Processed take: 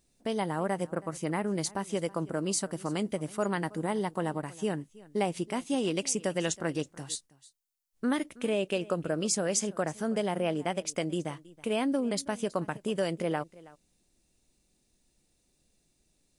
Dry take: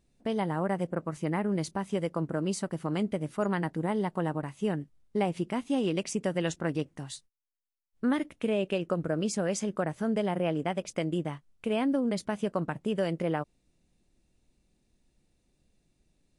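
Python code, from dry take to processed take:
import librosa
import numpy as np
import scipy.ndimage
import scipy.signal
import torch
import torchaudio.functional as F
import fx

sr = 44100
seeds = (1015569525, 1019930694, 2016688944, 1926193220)

p1 = fx.bass_treble(x, sr, bass_db=-4, treble_db=9)
y = p1 + fx.echo_single(p1, sr, ms=323, db=-21.0, dry=0)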